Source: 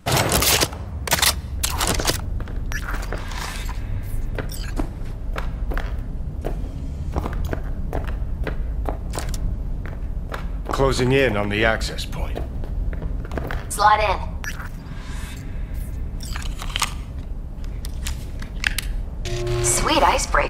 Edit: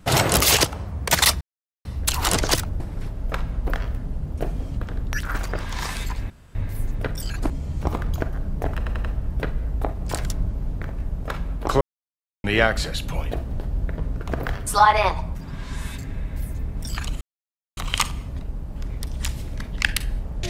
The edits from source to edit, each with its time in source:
1.41 insert silence 0.44 s
3.89 insert room tone 0.25 s
4.84–6.81 move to 2.36
8.08 stutter 0.09 s, 4 plays
10.85–11.48 mute
14.39–14.73 cut
16.59 insert silence 0.56 s

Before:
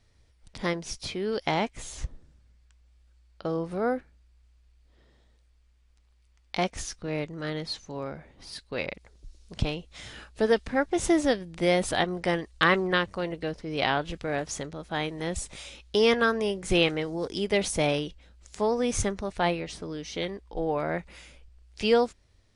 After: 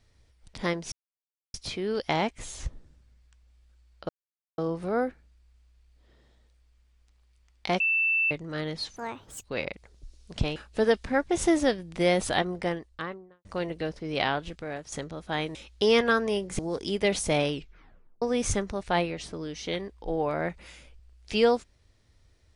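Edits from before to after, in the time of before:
0.92 insert silence 0.62 s
3.47 insert silence 0.49 s
6.69–7.2 bleep 2660 Hz -21.5 dBFS
7.85–8.65 speed 167%
9.77–10.18 cut
11.93–13.07 studio fade out
13.72–14.54 fade out, to -10 dB
15.17–15.68 cut
16.72–17.08 cut
18.01 tape stop 0.70 s

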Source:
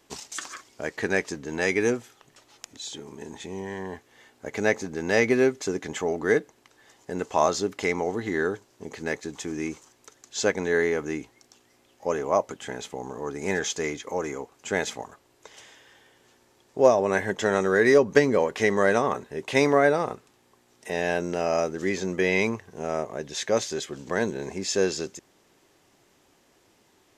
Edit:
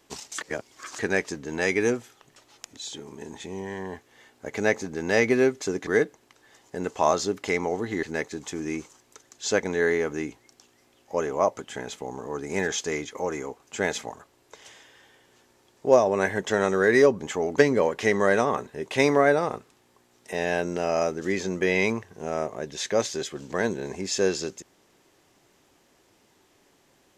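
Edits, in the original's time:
0.41–0.99 reverse
5.87–6.22 move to 18.13
8.38–8.95 cut

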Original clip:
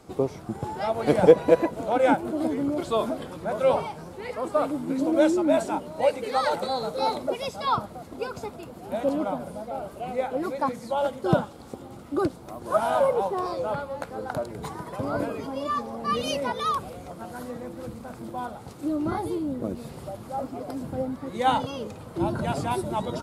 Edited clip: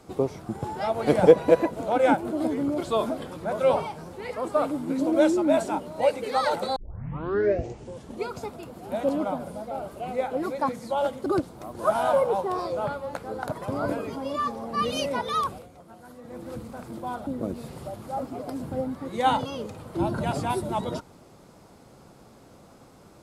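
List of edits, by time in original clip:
6.76 tape start 1.61 s
11.26–12.13 cut
14.39–14.83 cut
16.79–17.74 dip -10 dB, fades 0.21 s
18.58–19.48 cut

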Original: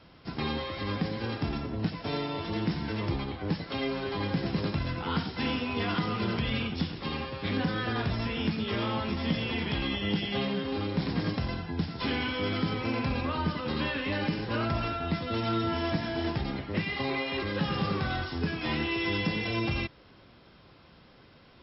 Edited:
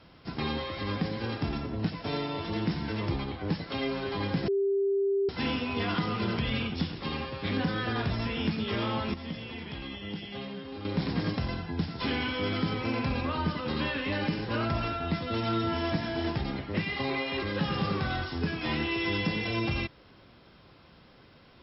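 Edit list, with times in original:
4.48–5.29 bleep 395 Hz -23.5 dBFS
9.14–10.85 gain -8.5 dB

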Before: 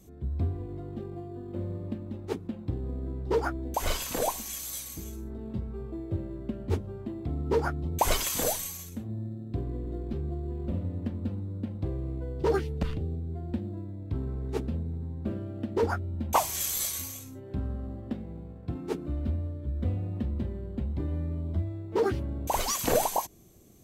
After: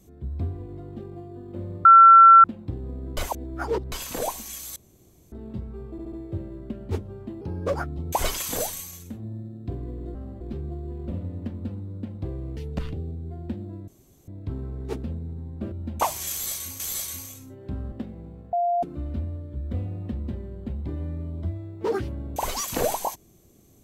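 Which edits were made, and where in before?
1.85–2.44 bleep 1350 Hz -7 dBFS
3.17–3.92 reverse
4.76–5.32 room tone
5.91 stutter 0.07 s, 4 plays
7.2–7.6 speed 122%
12.17–12.61 cut
13.92 insert room tone 0.40 s
15.36–16.05 cut
16.65–17.13 loop, 2 plays
17.77–18.03 move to 10.01
18.64–18.94 bleep 697 Hz -20 dBFS

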